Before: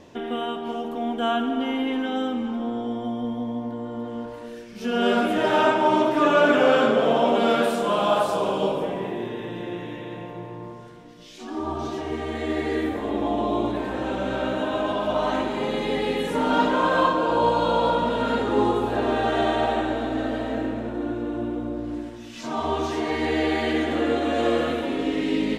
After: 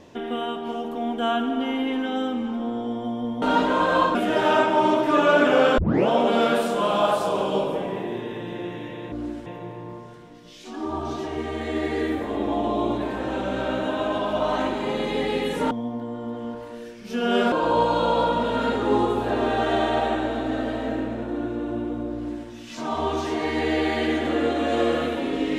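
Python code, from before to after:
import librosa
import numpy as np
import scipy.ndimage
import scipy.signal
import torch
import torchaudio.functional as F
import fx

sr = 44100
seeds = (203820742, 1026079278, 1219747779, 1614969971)

y = fx.edit(x, sr, fx.swap(start_s=3.42, length_s=1.81, other_s=16.45, other_length_s=0.73),
    fx.tape_start(start_s=6.86, length_s=0.3),
    fx.duplicate(start_s=21.81, length_s=0.34, to_s=10.2), tone=tone)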